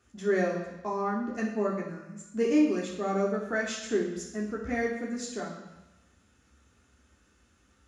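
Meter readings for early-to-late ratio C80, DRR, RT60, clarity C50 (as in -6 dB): 7.0 dB, -3.0 dB, 1.0 s, 4.5 dB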